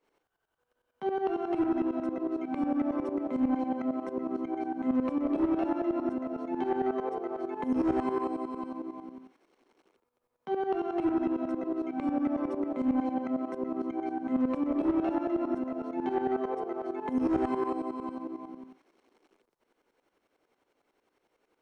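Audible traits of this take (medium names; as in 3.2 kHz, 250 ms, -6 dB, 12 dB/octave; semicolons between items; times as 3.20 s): tremolo saw up 11 Hz, depth 80%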